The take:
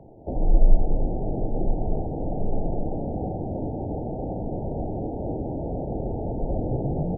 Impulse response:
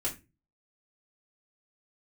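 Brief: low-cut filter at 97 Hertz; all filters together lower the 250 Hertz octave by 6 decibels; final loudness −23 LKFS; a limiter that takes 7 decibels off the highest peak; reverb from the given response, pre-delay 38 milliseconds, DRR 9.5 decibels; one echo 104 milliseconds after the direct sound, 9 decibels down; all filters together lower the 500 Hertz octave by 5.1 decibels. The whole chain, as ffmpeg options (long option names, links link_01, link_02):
-filter_complex "[0:a]highpass=97,equalizer=frequency=250:width_type=o:gain=-7,equalizer=frequency=500:width_type=o:gain=-4.5,alimiter=level_in=3dB:limit=-24dB:level=0:latency=1,volume=-3dB,aecho=1:1:104:0.355,asplit=2[link_01][link_02];[1:a]atrim=start_sample=2205,adelay=38[link_03];[link_02][link_03]afir=irnorm=-1:irlink=0,volume=-13.5dB[link_04];[link_01][link_04]amix=inputs=2:normalize=0,volume=12.5dB"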